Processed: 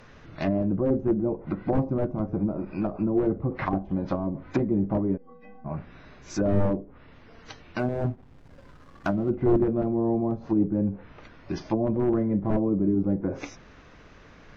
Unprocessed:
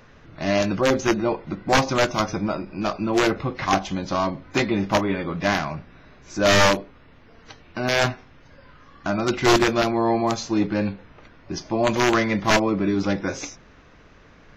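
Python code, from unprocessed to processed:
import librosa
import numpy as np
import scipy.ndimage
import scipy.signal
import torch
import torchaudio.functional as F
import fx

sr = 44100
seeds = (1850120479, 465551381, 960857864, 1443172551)

y = fx.env_lowpass_down(x, sr, base_hz=380.0, full_db=-20.0)
y = fx.stiff_resonator(y, sr, f0_hz=230.0, decay_s=0.74, stiffness=0.03, at=(5.16, 5.64), fade=0.02)
y = fx.backlash(y, sr, play_db=-46.0, at=(7.79, 9.3))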